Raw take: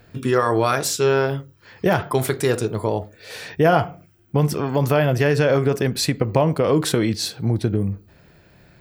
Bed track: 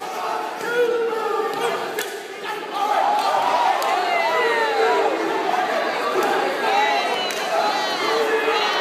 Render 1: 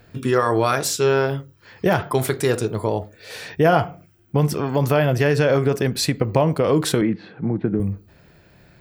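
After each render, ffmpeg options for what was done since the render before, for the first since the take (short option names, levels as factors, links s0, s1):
-filter_complex "[0:a]asettb=1/sr,asplit=3[s0][s1][s2];[s0]atrim=end=7.014[s3];[s1]atrim=start=7.01:end=7.8,asetpts=PTS-STARTPTS,afade=t=in:d=0.004:c=qsin,afade=t=out:st=0.786:d=0.004:c=qsin,highpass=160,equalizer=f=180:t=q:w=4:g=8,equalizer=f=290:t=q:w=4:g=3,equalizer=f=620:t=q:w=4:g=-3,lowpass=f=2100:w=0.5412,lowpass=f=2100:w=1.3066[s4];[s2]atrim=start=7.796[s5];[s3][s4]acrossfade=d=0.004:c1=hsin:c2=qsin[s6];[s6][s5]acrossfade=d=0.004:c1=qsin:c2=hsin"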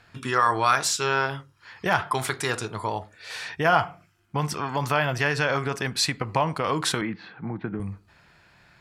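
-af "lowpass=9100,lowshelf=f=700:t=q:w=1.5:g=-9"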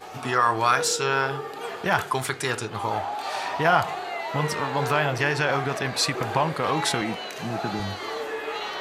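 -filter_complex "[1:a]volume=0.266[s0];[0:a][s0]amix=inputs=2:normalize=0"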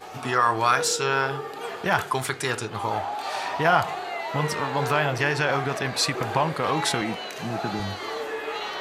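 -af anull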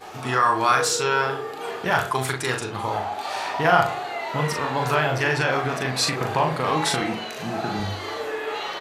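-filter_complex "[0:a]asplit=2[s0][s1];[s1]adelay=39,volume=0.596[s2];[s0][s2]amix=inputs=2:normalize=0,asplit=2[s3][s4];[s4]adelay=62,lowpass=f=1100:p=1,volume=0.299,asplit=2[s5][s6];[s6]adelay=62,lowpass=f=1100:p=1,volume=0.54,asplit=2[s7][s8];[s8]adelay=62,lowpass=f=1100:p=1,volume=0.54,asplit=2[s9][s10];[s10]adelay=62,lowpass=f=1100:p=1,volume=0.54,asplit=2[s11][s12];[s12]adelay=62,lowpass=f=1100:p=1,volume=0.54,asplit=2[s13][s14];[s14]adelay=62,lowpass=f=1100:p=1,volume=0.54[s15];[s3][s5][s7][s9][s11][s13][s15]amix=inputs=7:normalize=0"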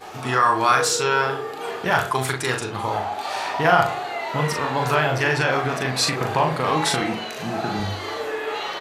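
-af "volume=1.19,alimiter=limit=0.708:level=0:latency=1"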